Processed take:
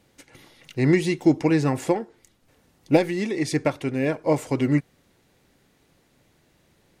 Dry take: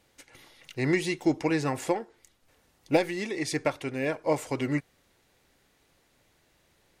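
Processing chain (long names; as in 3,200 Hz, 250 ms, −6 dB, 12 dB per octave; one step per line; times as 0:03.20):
parametric band 180 Hz +8 dB 2.4 octaves
level +1.5 dB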